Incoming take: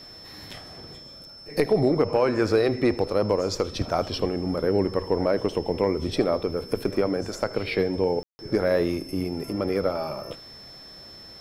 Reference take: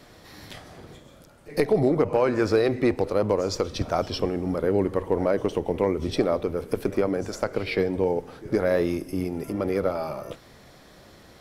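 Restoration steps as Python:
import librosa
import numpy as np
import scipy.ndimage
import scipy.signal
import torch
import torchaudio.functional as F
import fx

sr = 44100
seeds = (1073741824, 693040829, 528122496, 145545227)

y = fx.notch(x, sr, hz=5300.0, q=30.0)
y = fx.fix_ambience(y, sr, seeds[0], print_start_s=0.97, print_end_s=1.47, start_s=8.23, end_s=8.39)
y = fx.fix_echo_inverse(y, sr, delay_ms=79, level_db=-20.0)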